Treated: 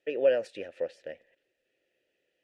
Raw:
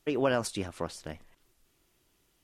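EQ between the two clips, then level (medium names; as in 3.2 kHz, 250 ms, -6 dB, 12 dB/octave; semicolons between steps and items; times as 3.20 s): vowel filter e; +9.0 dB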